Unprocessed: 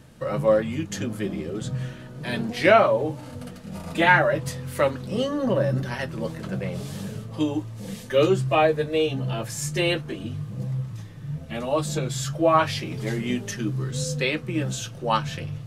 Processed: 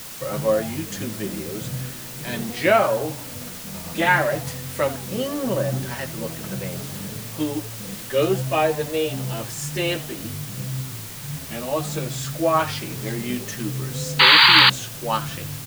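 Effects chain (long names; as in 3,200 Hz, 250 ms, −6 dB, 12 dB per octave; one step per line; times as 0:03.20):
echo with shifted repeats 81 ms, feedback 33%, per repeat +130 Hz, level −17 dB
sound drawn into the spectrogram noise, 0:14.19–0:14.70, 820–4,800 Hz −11 dBFS
bit-depth reduction 6 bits, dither triangular
level −1 dB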